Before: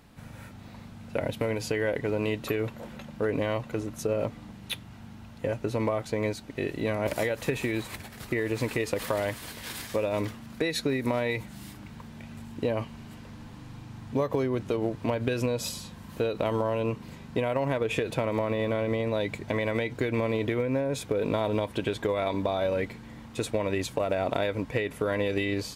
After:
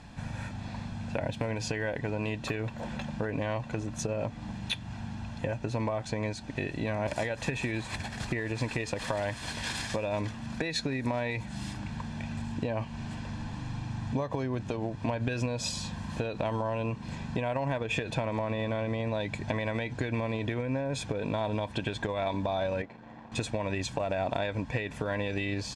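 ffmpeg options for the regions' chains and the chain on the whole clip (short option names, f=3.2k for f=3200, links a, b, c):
-filter_complex "[0:a]asettb=1/sr,asplit=3[a][b][c];[a]atrim=end=22.824[d];[b]atrim=start=22.82:end=23.32,asetpts=PTS-STARTPTS,afade=t=in:d=0.004:c=qsin,afade=t=out:st=0.496:d=0.004:c=qsin,aeval=exprs='sgn(val(0))*max(abs(val(0))-0.00299,0)':c=same,bandpass=f=600:t=q:w=0.74[e];[c]atrim=start=23.316[f];[d][e]acrossfade=d=0.004:c1=hsin:c2=qsin[g];[g][f]acrossfade=d=0.004:c1=qsin:c2=hsin,acompressor=threshold=-37dB:ratio=2.5,lowpass=f=8.2k:w=0.5412,lowpass=f=8.2k:w=1.3066,aecho=1:1:1.2:0.46,volume=5.5dB"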